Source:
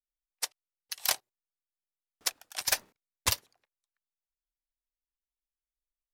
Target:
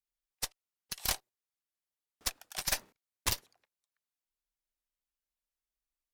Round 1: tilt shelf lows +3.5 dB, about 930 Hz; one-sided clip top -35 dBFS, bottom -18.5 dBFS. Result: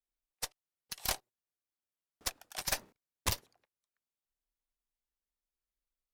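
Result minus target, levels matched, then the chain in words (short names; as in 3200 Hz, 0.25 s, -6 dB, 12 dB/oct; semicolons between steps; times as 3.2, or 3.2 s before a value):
1000 Hz band +2.5 dB
one-sided clip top -35 dBFS, bottom -18.5 dBFS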